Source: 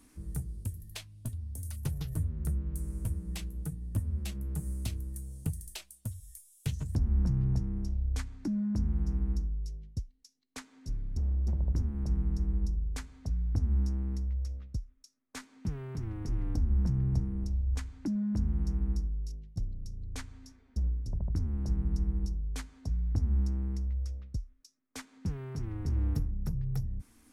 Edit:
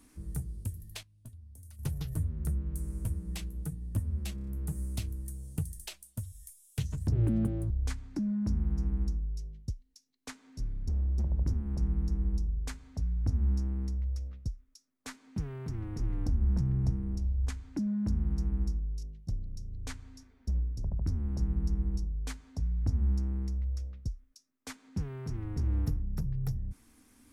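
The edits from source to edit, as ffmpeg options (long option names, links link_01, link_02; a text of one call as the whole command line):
ffmpeg -i in.wav -filter_complex "[0:a]asplit=9[link_01][link_02][link_03][link_04][link_05][link_06][link_07][link_08][link_09];[link_01]atrim=end=1.03,asetpts=PTS-STARTPTS,afade=type=out:start_time=0.84:duration=0.19:curve=log:silence=0.266073[link_10];[link_02]atrim=start=1.03:end=1.79,asetpts=PTS-STARTPTS,volume=-11.5dB[link_11];[link_03]atrim=start=1.79:end=4.382,asetpts=PTS-STARTPTS,afade=type=in:duration=0.19:curve=log:silence=0.266073[link_12];[link_04]atrim=start=4.348:end=4.382[link_13];[link_05]atrim=start=4.348:end=4.382[link_14];[link_06]atrim=start=4.348:end=4.382[link_15];[link_07]atrim=start=4.348:end=7.004[link_16];[link_08]atrim=start=7:end=7.99,asetpts=PTS-STARTPTS,asetrate=74970,aresample=44100[link_17];[link_09]atrim=start=7.986[link_18];[link_10][link_11][link_12]concat=n=3:v=0:a=1[link_19];[link_19][link_13]acrossfade=duration=0.004:curve1=hsin:curve2=hsin[link_20];[link_20][link_14]acrossfade=duration=0.004:curve1=hsin:curve2=hsin[link_21];[link_21][link_15]acrossfade=duration=0.004:curve1=hsin:curve2=hsin[link_22];[link_22][link_16]acrossfade=duration=0.004:curve1=hsin:curve2=hsin[link_23];[link_23][link_17]acrossfade=duration=0.004:curve1=hsin:curve2=hsin[link_24];[link_24][link_18]acrossfade=duration=0.004:curve1=hsin:curve2=hsin" out.wav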